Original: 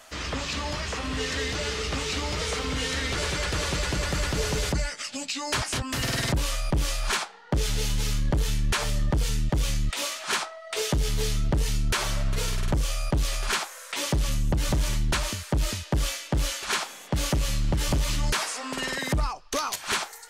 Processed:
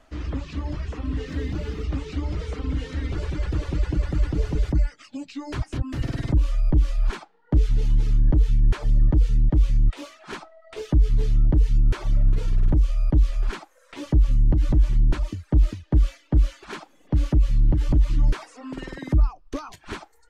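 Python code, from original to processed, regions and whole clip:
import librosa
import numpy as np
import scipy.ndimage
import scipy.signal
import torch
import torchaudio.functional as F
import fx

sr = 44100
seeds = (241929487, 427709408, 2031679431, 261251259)

y = fx.chain(x, sr, fx.peak_eq(hz=190.0, db=5.0, octaves=1.3),
    fx.quant_dither(seeds[0], bits=8, dither='triangular'), at=(1.28, 1.85))
y = fx.riaa(y, sr, side='playback')
y = fx.dereverb_blind(y, sr, rt60_s=0.67)
y = fx.peak_eq(y, sr, hz=310.0, db=10.5, octaves=0.41)
y = y * 10.0 ** (-7.5 / 20.0)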